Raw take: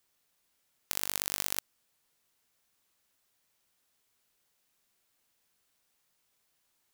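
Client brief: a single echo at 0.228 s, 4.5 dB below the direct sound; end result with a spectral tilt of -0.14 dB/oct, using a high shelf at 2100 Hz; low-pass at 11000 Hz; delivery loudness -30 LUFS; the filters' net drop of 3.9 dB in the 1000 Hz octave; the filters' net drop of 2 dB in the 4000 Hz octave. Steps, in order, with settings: LPF 11000 Hz; bell 1000 Hz -6 dB; high shelf 2100 Hz +5 dB; bell 4000 Hz -7.5 dB; echo 0.228 s -4.5 dB; gain +4 dB

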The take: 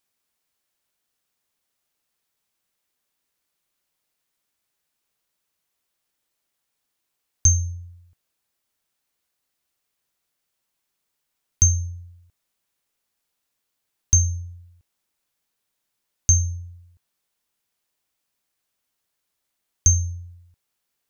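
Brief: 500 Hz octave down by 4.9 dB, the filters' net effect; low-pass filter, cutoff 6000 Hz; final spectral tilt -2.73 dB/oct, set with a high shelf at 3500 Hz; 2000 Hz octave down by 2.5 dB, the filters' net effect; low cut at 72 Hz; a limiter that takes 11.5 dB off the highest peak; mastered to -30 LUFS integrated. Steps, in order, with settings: HPF 72 Hz; LPF 6000 Hz; bell 500 Hz -7.5 dB; bell 2000 Hz -6 dB; high shelf 3500 Hz +9 dB; gain -4 dB; limiter -19.5 dBFS

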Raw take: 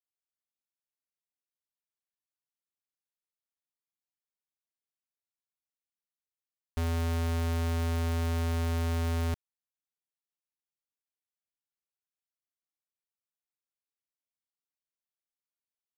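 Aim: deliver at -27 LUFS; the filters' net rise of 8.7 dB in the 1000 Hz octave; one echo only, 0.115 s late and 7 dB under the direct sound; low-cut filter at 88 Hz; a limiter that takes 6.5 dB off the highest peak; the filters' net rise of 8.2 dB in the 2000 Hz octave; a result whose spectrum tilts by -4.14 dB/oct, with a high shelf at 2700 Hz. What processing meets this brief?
HPF 88 Hz; bell 1000 Hz +9 dB; bell 2000 Hz +4 dB; high shelf 2700 Hz +8 dB; limiter -21.5 dBFS; echo 0.115 s -7 dB; gain +10 dB

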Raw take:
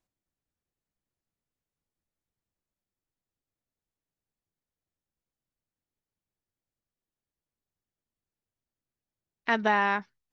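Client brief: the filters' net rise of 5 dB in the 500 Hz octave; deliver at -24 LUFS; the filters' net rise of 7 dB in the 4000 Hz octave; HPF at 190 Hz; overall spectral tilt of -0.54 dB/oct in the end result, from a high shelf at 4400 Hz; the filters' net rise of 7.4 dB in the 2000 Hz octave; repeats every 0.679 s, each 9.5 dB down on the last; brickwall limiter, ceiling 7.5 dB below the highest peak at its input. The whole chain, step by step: HPF 190 Hz; bell 500 Hz +6.5 dB; bell 2000 Hz +7.5 dB; bell 4000 Hz +9 dB; high shelf 4400 Hz -6 dB; limiter -12.5 dBFS; feedback echo 0.679 s, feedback 33%, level -9.5 dB; gain +2.5 dB

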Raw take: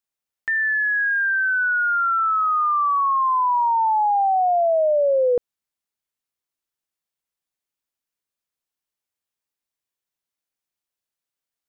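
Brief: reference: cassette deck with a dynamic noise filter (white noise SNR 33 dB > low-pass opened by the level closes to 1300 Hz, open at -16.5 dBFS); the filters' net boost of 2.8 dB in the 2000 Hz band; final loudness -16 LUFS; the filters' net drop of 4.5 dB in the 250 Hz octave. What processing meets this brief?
bell 250 Hz -7 dB; bell 2000 Hz +4 dB; white noise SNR 33 dB; low-pass opened by the level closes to 1300 Hz, open at -16.5 dBFS; gain +2 dB

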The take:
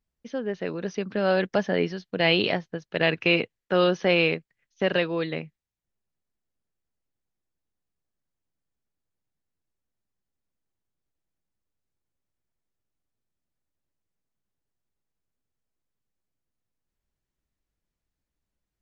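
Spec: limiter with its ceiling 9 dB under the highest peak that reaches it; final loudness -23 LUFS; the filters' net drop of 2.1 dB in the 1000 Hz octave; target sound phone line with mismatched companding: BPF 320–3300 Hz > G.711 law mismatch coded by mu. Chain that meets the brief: bell 1000 Hz -3 dB; limiter -17.5 dBFS; BPF 320–3300 Hz; G.711 law mismatch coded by mu; gain +8 dB

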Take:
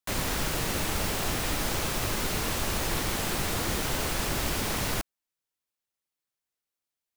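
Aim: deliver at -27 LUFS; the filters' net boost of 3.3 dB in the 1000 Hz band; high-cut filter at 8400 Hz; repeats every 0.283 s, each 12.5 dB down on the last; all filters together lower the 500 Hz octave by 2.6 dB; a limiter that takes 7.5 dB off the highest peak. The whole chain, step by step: LPF 8400 Hz; bell 500 Hz -5 dB; bell 1000 Hz +5.5 dB; limiter -24.5 dBFS; feedback echo 0.283 s, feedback 24%, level -12.5 dB; gain +6.5 dB

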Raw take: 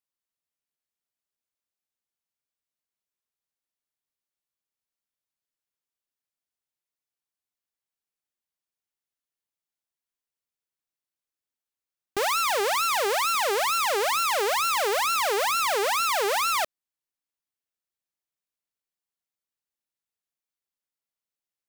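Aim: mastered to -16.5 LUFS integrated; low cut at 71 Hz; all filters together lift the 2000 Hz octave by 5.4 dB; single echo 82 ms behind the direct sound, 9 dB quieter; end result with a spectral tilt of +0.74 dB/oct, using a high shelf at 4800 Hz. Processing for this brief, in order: HPF 71 Hz; bell 2000 Hz +5.5 dB; high shelf 4800 Hz +6.5 dB; echo 82 ms -9 dB; gain +3 dB

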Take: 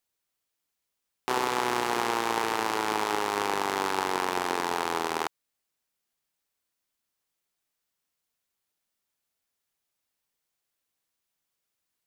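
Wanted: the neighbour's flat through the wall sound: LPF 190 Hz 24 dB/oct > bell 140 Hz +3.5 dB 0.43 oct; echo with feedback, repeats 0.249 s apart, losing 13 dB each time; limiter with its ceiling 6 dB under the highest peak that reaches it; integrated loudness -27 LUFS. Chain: limiter -15 dBFS; LPF 190 Hz 24 dB/oct; bell 140 Hz +3.5 dB 0.43 oct; feedback echo 0.249 s, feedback 22%, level -13 dB; gain +25.5 dB

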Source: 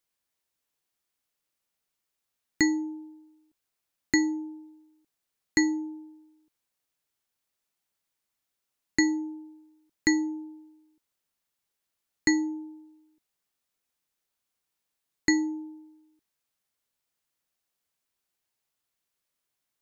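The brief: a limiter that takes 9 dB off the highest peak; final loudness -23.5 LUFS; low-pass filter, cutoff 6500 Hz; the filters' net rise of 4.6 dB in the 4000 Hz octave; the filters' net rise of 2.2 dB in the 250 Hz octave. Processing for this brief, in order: LPF 6500 Hz; bell 250 Hz +3 dB; bell 4000 Hz +5.5 dB; gain +6 dB; limiter -11 dBFS

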